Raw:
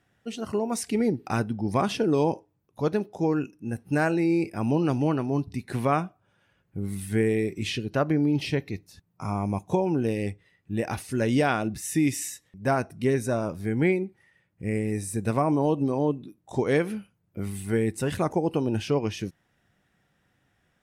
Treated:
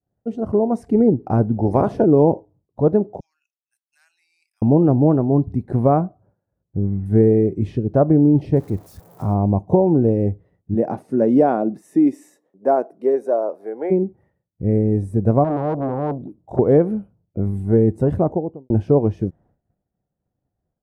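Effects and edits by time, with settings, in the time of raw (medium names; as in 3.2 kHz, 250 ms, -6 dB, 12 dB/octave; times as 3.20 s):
1.56–2.04 s: spectral peaks clipped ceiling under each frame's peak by 15 dB
3.20–4.62 s: inverse Chebyshev high-pass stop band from 510 Hz, stop band 80 dB
6.01–7.06 s: Chebyshev low-pass 2.1 kHz, order 3
8.56–9.34 s: zero-crossing glitches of -23.5 dBFS
10.74–13.90 s: high-pass 150 Hz -> 500 Hz 24 dB/octave
15.44–16.59 s: transformer saturation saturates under 1.8 kHz
18.07–18.70 s: studio fade out
whole clip: bass shelf 140 Hz +10.5 dB; expander -53 dBFS; FFT filter 140 Hz 0 dB, 660 Hz +5 dB, 2.7 kHz -25 dB; trim +5 dB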